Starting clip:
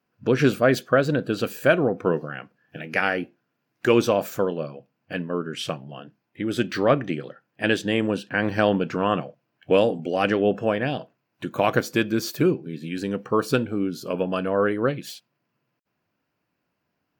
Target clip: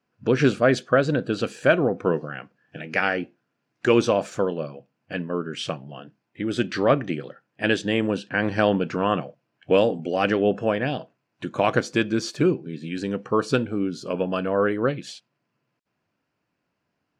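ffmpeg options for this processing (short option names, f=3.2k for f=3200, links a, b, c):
-af "lowpass=f=8.5k:w=0.5412,lowpass=f=8.5k:w=1.3066"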